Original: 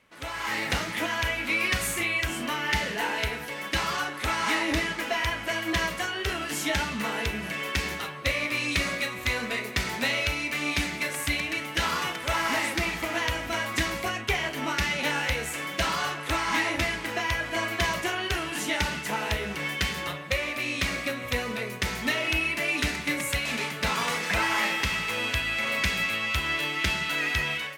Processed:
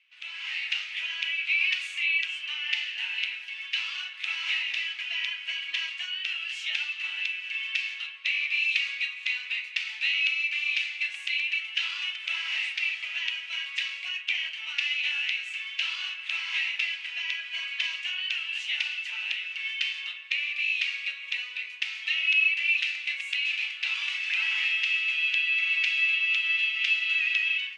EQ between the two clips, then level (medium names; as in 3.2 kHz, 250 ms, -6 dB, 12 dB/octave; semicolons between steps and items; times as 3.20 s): ladder band-pass 2.9 kHz, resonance 70%; distance through air 73 m; treble shelf 4.1 kHz +5.5 dB; +6.0 dB